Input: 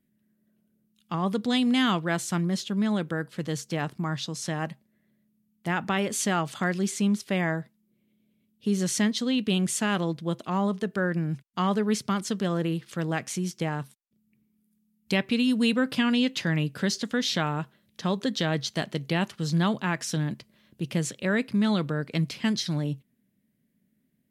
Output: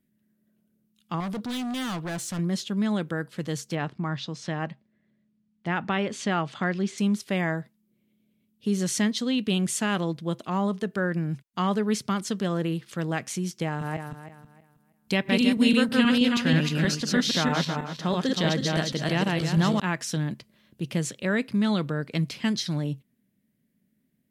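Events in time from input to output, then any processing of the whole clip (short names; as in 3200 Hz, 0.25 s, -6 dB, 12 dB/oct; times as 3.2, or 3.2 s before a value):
1.2–2.39 hard clip -29 dBFS
3.75–6.98 LPF 4200 Hz
13.65–19.8 regenerating reverse delay 0.16 s, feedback 49%, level -1 dB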